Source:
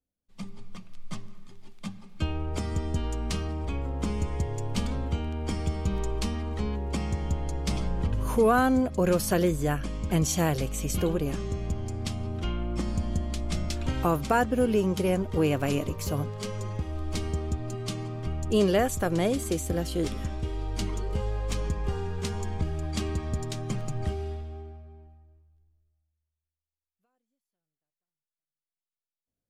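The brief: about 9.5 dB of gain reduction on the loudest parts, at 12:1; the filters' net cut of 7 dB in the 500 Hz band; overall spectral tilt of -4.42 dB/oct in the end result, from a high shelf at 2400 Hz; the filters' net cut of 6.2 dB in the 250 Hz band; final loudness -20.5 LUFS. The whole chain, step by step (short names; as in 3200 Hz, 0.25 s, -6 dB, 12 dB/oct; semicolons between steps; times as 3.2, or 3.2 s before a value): bell 250 Hz -7 dB; bell 500 Hz -7 dB; high shelf 2400 Hz +7.5 dB; compressor 12:1, threshold -30 dBFS; gain +15.5 dB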